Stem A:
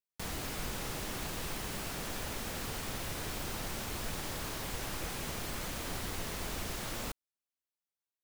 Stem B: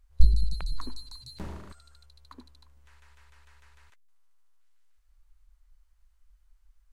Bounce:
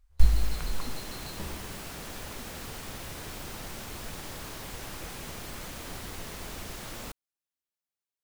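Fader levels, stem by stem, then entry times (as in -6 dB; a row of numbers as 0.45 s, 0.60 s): -1.5 dB, -1.5 dB; 0.00 s, 0.00 s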